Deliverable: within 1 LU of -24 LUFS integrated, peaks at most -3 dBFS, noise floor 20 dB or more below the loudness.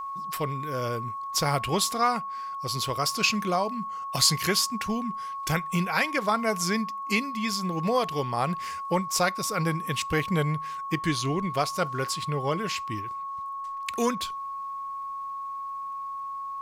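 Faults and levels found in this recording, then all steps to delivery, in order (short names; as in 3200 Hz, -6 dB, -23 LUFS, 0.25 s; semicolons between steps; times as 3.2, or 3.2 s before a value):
ticks 23/s; steady tone 1100 Hz; tone level -32 dBFS; loudness -28.0 LUFS; peak -8.0 dBFS; loudness target -24.0 LUFS
-> de-click; notch 1100 Hz, Q 30; gain +4 dB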